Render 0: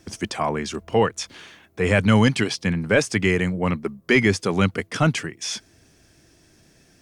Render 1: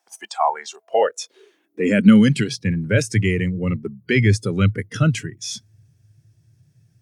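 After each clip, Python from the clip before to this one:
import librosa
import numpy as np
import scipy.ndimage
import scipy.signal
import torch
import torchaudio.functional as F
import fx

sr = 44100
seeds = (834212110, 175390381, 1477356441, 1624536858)

y = fx.filter_sweep_highpass(x, sr, from_hz=800.0, to_hz=110.0, start_s=0.73, end_s=2.66, q=5.8)
y = fx.noise_reduce_blind(y, sr, reduce_db=15)
y = fx.high_shelf(y, sr, hz=9600.0, db=10.5)
y = F.gain(torch.from_numpy(y), -2.5).numpy()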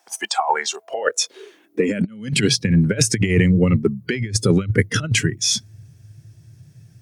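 y = fx.over_compress(x, sr, threshold_db=-22.0, ratio=-0.5)
y = F.gain(torch.from_numpy(y), 5.0).numpy()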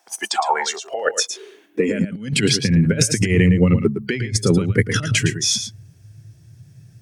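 y = x + 10.0 ** (-9.0 / 20.0) * np.pad(x, (int(112 * sr / 1000.0), 0))[:len(x)]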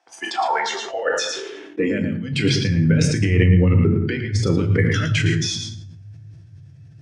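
y = scipy.signal.sosfilt(scipy.signal.butter(2, 4200.0, 'lowpass', fs=sr, output='sos'), x)
y = fx.rev_fdn(y, sr, rt60_s=0.68, lf_ratio=1.55, hf_ratio=0.8, size_ms=61.0, drr_db=4.5)
y = fx.sustainer(y, sr, db_per_s=36.0)
y = F.gain(torch.from_numpy(y), -4.0).numpy()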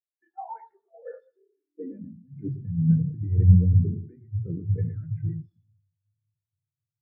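y = scipy.signal.medfilt(x, 15)
y = fx.spectral_expand(y, sr, expansion=2.5)
y = F.gain(torch.from_numpy(y), -2.0).numpy()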